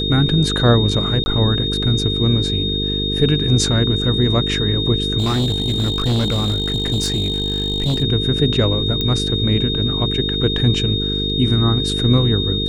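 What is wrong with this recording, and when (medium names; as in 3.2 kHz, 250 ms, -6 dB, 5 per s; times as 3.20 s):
buzz 50 Hz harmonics 9 -23 dBFS
whine 3.7 kHz -21 dBFS
1.24–1.26 s: dropout 20 ms
5.18–8.03 s: clipped -14.5 dBFS
9.01 s: pop -8 dBFS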